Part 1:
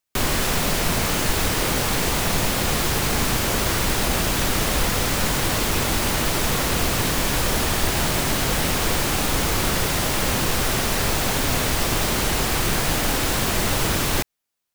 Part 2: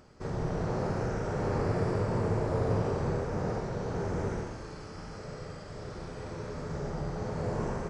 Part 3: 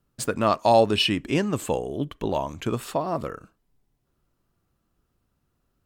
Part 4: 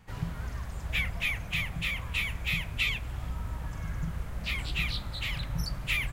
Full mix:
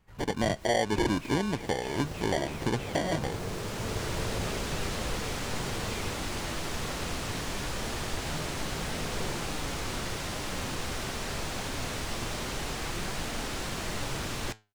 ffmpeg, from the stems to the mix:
-filter_complex "[0:a]flanger=delay=4.2:depth=8.9:regen=80:speed=0.23:shape=triangular,adelay=300,volume=-7.5dB[a];[1:a]adelay=1650,volume=-8dB[b];[2:a]acrusher=samples=34:mix=1:aa=0.000001,volume=-0.5dB,asplit=2[c][d];[3:a]asoftclip=type=tanh:threshold=-32dB,volume=-10.5dB[e];[d]apad=whole_len=663396[f];[a][f]sidechaincompress=threshold=-29dB:ratio=10:attack=12:release=1400[g];[g][b][c][e]amix=inputs=4:normalize=0,acrossover=split=9500[h][i];[i]acompressor=threshold=-55dB:ratio=4:attack=1:release=60[j];[h][j]amix=inputs=2:normalize=0,alimiter=limit=-17dB:level=0:latency=1:release=290"

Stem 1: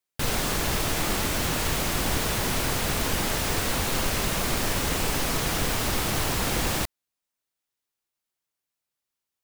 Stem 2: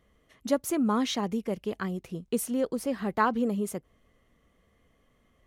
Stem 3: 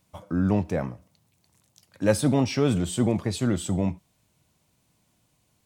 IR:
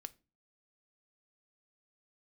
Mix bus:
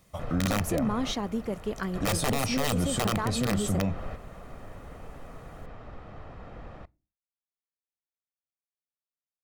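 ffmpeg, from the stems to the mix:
-filter_complex "[0:a]lowpass=1.3k,volume=-8.5dB,asplit=2[a][b];[b]volume=-11.5dB[c];[1:a]alimiter=limit=-21.5dB:level=0:latency=1:release=241,volume=-2dB,asplit=2[d][e];[e]volume=-3.5dB[f];[2:a]aeval=exprs='(mod(5.96*val(0)+1,2)-1)/5.96':c=same,volume=2.5dB,asplit=3[g][h][i];[h]volume=-9dB[j];[i]apad=whole_len=416115[k];[a][k]sidechaingate=range=-12dB:threshold=-53dB:ratio=16:detection=peak[l];[l][g]amix=inputs=2:normalize=0,aecho=1:1:1.6:0.53,acompressor=threshold=-35dB:ratio=1.5,volume=0dB[m];[3:a]atrim=start_sample=2205[n];[c][f][j]amix=inputs=3:normalize=0[o];[o][n]afir=irnorm=-1:irlink=0[p];[d][m][p]amix=inputs=3:normalize=0,alimiter=limit=-19dB:level=0:latency=1:release=16"

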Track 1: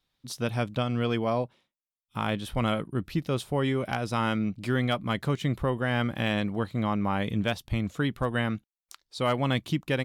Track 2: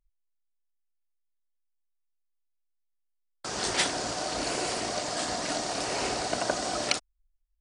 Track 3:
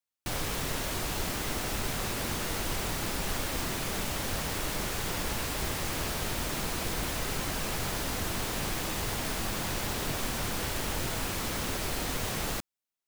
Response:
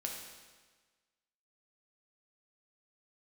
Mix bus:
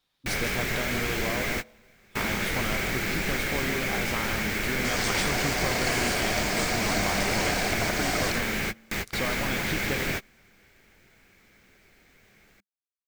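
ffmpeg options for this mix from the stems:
-filter_complex "[0:a]lowshelf=f=230:g=-8.5,acompressor=threshold=-33dB:ratio=10,volume=1.5dB,asplit=4[a][b][c][d];[b]volume=-10.5dB[e];[c]volume=-5.5dB[f];[1:a]alimiter=limit=-18.5dB:level=0:latency=1:release=150,adelay=1400,volume=1dB[g];[2:a]equalizer=f=200:t=o:w=0.33:g=6,equalizer=f=400:t=o:w=0.33:g=5,equalizer=f=1k:t=o:w=0.33:g=-5,equalizer=f=1.6k:t=o:w=0.33:g=7,equalizer=f=10k:t=o:w=0.33:g=-8,equalizer=f=2.2k:w=4.2:g=13,volume=1dB[h];[d]apad=whole_len=576686[i];[h][i]sidechaingate=range=-30dB:threshold=-57dB:ratio=16:detection=peak[j];[3:a]atrim=start_sample=2205[k];[e][k]afir=irnorm=-1:irlink=0[l];[f]aecho=0:1:162:1[m];[a][g][j][l][m]amix=inputs=5:normalize=0"

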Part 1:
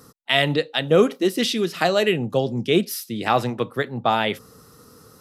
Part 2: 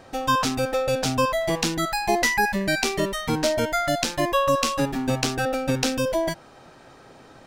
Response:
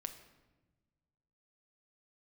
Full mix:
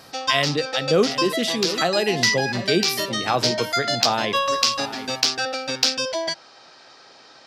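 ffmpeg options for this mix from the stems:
-filter_complex "[0:a]volume=-2.5dB,asplit=3[a][b][c];[b]volume=-13dB[d];[1:a]lowpass=f=4.9k:t=q:w=3.6,acontrast=43,highpass=f=910:p=1,volume=-3.5dB[e];[c]apad=whole_len=329309[f];[e][f]sidechaincompress=threshold=-26dB:ratio=8:attack=21:release=115[g];[d]aecho=0:1:734:1[h];[a][g][h]amix=inputs=3:normalize=0,equalizer=f=7.6k:w=1.5:g=2"

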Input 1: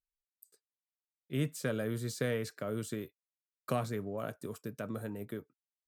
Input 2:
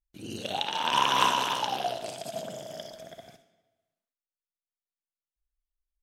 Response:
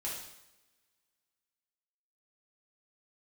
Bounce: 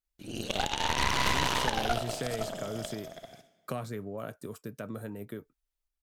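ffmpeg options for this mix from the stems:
-filter_complex "[0:a]acompressor=threshold=-35dB:ratio=2,volume=1dB[a];[1:a]aeval=exprs='0.596*(cos(1*acos(clip(val(0)/0.596,-1,1)))-cos(1*PI/2))+0.266*(cos(6*acos(clip(val(0)/0.596,-1,1)))-cos(6*PI/2))':c=same,adelay=50,volume=-0.5dB[b];[a][b]amix=inputs=2:normalize=0,alimiter=limit=-12.5dB:level=0:latency=1:release=44"

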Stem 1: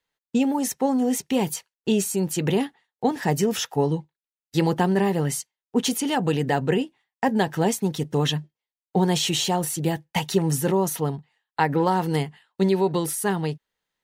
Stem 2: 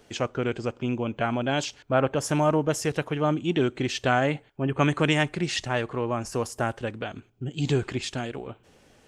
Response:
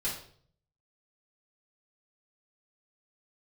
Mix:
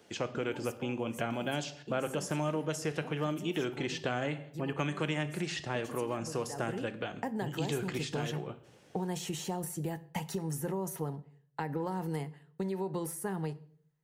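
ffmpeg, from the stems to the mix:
-filter_complex "[0:a]equalizer=f=3.6k:t=o:w=1.2:g=-9.5,acompressor=threshold=-24dB:ratio=3,volume=-7dB,afade=t=in:st=6.5:d=0.39:silence=0.281838,asplit=2[a][b];[b]volume=-17.5dB[c];[1:a]highpass=100,volume=-4.5dB,asplit=2[d][e];[e]volume=-13dB[f];[2:a]atrim=start_sample=2205[g];[c][f]amix=inputs=2:normalize=0[h];[h][g]afir=irnorm=-1:irlink=0[i];[a][d][i]amix=inputs=3:normalize=0,acrossover=split=560|1900[j][k][l];[j]acompressor=threshold=-33dB:ratio=4[m];[k]acompressor=threshold=-39dB:ratio=4[n];[l]acompressor=threshold=-40dB:ratio=4[o];[m][n][o]amix=inputs=3:normalize=0"

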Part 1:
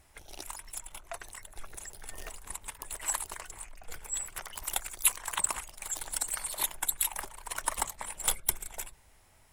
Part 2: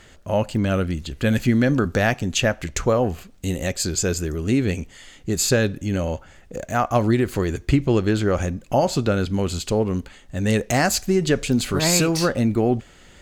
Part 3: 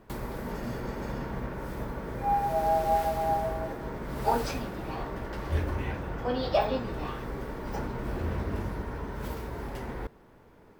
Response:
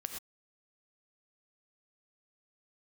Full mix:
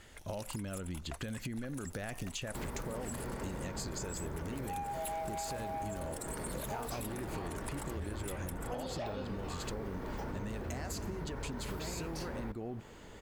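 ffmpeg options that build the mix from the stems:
-filter_complex "[0:a]volume=-3.5dB[a];[1:a]alimiter=limit=-13.5dB:level=0:latency=1,acompressor=threshold=-25dB:ratio=6,volume=-8.5dB[b];[2:a]adelay=2450,volume=2dB[c];[a][c]amix=inputs=2:normalize=0,asoftclip=type=tanh:threshold=-21dB,alimiter=level_in=4.5dB:limit=-24dB:level=0:latency=1:release=190,volume=-4.5dB,volume=0dB[d];[b][d]amix=inputs=2:normalize=0,acompressor=threshold=-36dB:ratio=6"

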